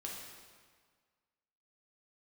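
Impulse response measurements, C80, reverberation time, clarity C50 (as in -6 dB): 3.0 dB, 1.7 s, 1.0 dB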